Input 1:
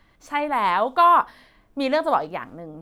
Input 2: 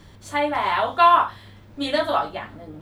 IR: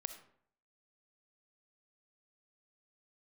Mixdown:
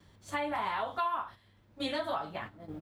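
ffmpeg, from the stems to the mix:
-filter_complex "[0:a]asubboost=boost=6:cutoff=170,flanger=delay=1.8:depth=6.8:regen=-50:speed=1.2:shape=triangular,volume=0.355,asplit=2[s0][s1];[1:a]adelay=2.9,volume=0.668[s2];[s1]apad=whole_len=124111[s3];[s2][s3]sidechaincompress=threshold=0.0178:ratio=10:attack=16:release=924[s4];[s0][s4]amix=inputs=2:normalize=0,agate=range=0.355:threshold=0.00794:ratio=16:detection=peak,highpass=40,acompressor=threshold=0.0316:ratio=4"

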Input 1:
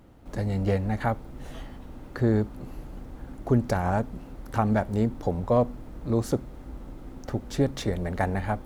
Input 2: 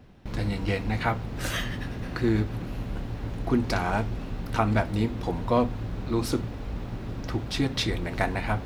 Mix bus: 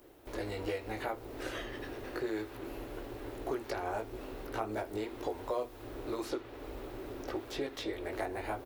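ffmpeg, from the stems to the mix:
-filter_complex "[0:a]aemphasis=mode=production:type=50fm,volume=0.501[s0];[1:a]adelay=14,volume=0.531[s1];[s0][s1]amix=inputs=2:normalize=0,lowshelf=f=260:t=q:w=3:g=-10,acrossover=split=820|4400[s2][s3][s4];[s2]acompressor=threshold=0.0158:ratio=4[s5];[s3]acompressor=threshold=0.00708:ratio=4[s6];[s4]acompressor=threshold=0.00126:ratio=4[s7];[s5][s6][s7]amix=inputs=3:normalize=0"

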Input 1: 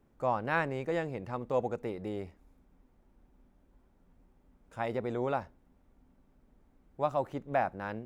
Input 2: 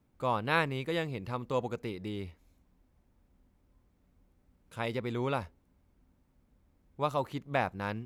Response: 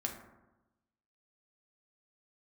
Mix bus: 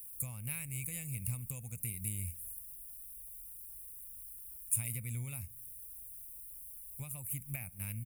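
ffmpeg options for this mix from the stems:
-filter_complex "[0:a]acompressor=threshold=0.0112:ratio=6,aexciter=amount=12:drive=6.3:freq=2500,highshelf=f=6200:g=10.5,volume=0.841,asplit=2[s0][s1];[1:a]acompressor=threshold=0.02:ratio=6,volume=1.26,asplit=2[s2][s3];[s3]volume=0.133[s4];[s1]apad=whole_len=355072[s5];[s2][s5]sidechaingate=range=0.0224:threshold=0.00447:ratio=16:detection=peak[s6];[2:a]atrim=start_sample=2205[s7];[s4][s7]afir=irnorm=-1:irlink=0[s8];[s0][s6][s8]amix=inputs=3:normalize=0,firequalizer=gain_entry='entry(110,0);entry(340,-29);entry(610,-26);entry(920,-28);entry(1600,-22);entry(2300,-6);entry(3300,-25);entry(5700,-20);entry(9500,10)':delay=0.05:min_phase=1"

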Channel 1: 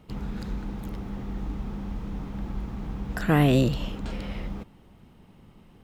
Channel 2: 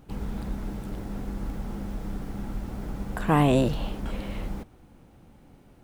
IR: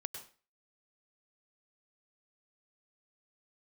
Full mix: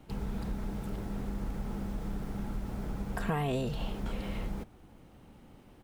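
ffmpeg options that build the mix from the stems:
-filter_complex "[0:a]highpass=240,volume=0.596[s0];[1:a]acompressor=threshold=0.0447:ratio=6,adelay=4.5,volume=0.75,asplit=2[s1][s2];[s2]apad=whole_len=257454[s3];[s0][s3]sidechaincompress=threshold=0.0141:ratio=8:attack=16:release=910[s4];[s4][s1]amix=inputs=2:normalize=0"

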